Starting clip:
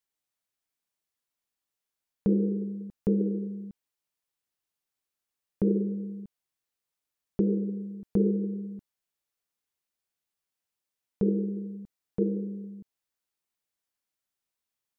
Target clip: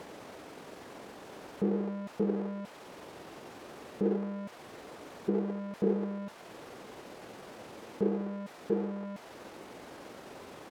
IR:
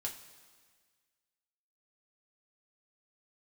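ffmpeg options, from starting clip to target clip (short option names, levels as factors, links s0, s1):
-filter_complex "[0:a]aeval=exprs='val(0)+0.5*0.0299*sgn(val(0))':c=same,acrossover=split=450[s0][s1];[s0]acompressor=mode=upward:threshold=0.02:ratio=2.5[s2];[s2][s1]amix=inputs=2:normalize=0,bandpass=f=610:t=q:w=0.81:csg=0,atempo=1.4"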